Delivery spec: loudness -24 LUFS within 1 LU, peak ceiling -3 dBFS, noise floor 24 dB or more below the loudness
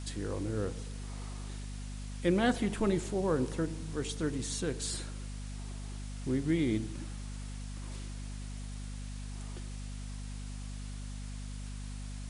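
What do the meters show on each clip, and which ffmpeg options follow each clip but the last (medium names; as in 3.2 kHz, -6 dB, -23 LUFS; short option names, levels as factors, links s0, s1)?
hum 50 Hz; highest harmonic 250 Hz; hum level -38 dBFS; noise floor -41 dBFS; noise floor target -61 dBFS; loudness -36.5 LUFS; peak level -15.5 dBFS; loudness target -24.0 LUFS
-> -af "bandreject=f=50:t=h:w=4,bandreject=f=100:t=h:w=4,bandreject=f=150:t=h:w=4,bandreject=f=200:t=h:w=4,bandreject=f=250:t=h:w=4"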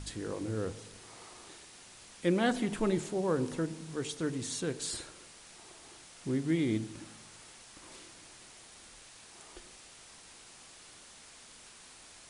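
hum not found; noise floor -54 dBFS; noise floor target -58 dBFS
-> -af "afftdn=nr=6:nf=-54"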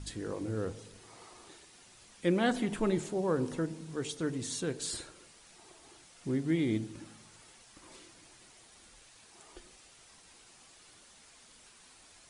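noise floor -59 dBFS; loudness -33.5 LUFS; peak level -16.0 dBFS; loudness target -24.0 LUFS
-> -af "volume=2.99"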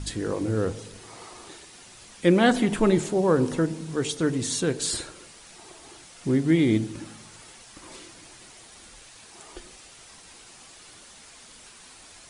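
loudness -24.0 LUFS; peak level -6.5 dBFS; noise floor -49 dBFS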